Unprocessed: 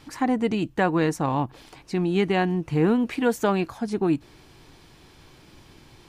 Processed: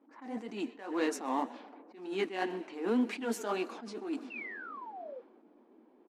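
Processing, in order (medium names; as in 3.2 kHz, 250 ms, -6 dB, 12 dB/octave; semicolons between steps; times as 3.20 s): treble shelf 3.4 kHz -11 dB; frequency-shifting echo 129 ms, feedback 37%, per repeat -44 Hz, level -20.5 dB; on a send at -21.5 dB: reverberation RT60 5.6 s, pre-delay 83 ms; on the sum: painted sound fall, 4.30–5.21 s, 470–2800 Hz -39 dBFS; in parallel at -8.5 dB: hard clipper -25.5 dBFS, distortion -6 dB; on the sum: peaking EQ 7.8 kHz +11.5 dB 3 oct; level-controlled noise filter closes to 520 Hz, open at -19.5 dBFS; elliptic high-pass 230 Hz, stop band 40 dB; flange 1.9 Hz, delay 3 ms, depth 8.6 ms, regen -31%; attacks held to a fixed rise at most 100 dB/s; trim -4.5 dB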